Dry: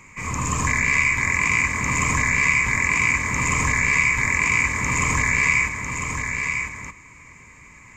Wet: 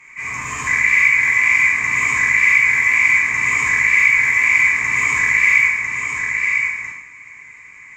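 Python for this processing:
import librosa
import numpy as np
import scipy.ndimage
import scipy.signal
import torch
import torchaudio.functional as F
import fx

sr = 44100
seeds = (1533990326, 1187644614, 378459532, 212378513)

y = fx.low_shelf(x, sr, hz=330.0, db=-10.0)
y = fx.fold_sine(y, sr, drive_db=4, ceiling_db=-6.0)
y = fx.peak_eq(y, sr, hz=2000.0, db=13.0, octaves=0.82)
y = fx.rev_plate(y, sr, seeds[0], rt60_s=0.66, hf_ratio=0.95, predelay_ms=0, drr_db=-4.0)
y = F.gain(torch.from_numpy(y), -16.0).numpy()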